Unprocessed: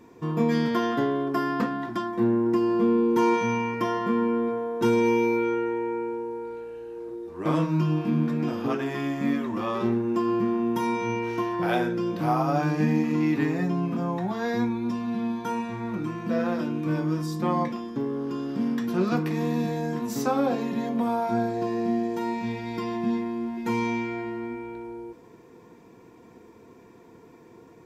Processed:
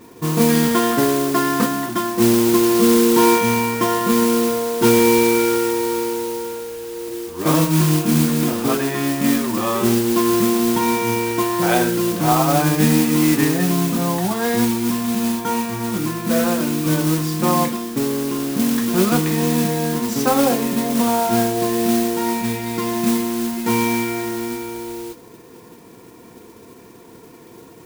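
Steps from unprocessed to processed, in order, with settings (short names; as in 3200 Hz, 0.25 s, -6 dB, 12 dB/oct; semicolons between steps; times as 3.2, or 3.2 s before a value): modulation noise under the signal 10 dB; gain +7.5 dB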